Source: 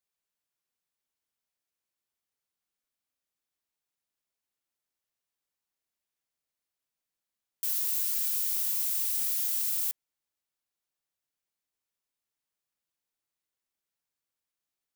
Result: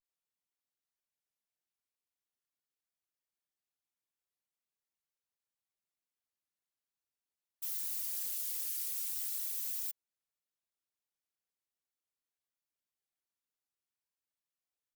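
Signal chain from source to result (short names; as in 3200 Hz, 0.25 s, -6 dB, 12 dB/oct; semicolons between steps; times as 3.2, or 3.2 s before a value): whisperiser; vibrato 0.43 Hz 100 cents; gain -7.5 dB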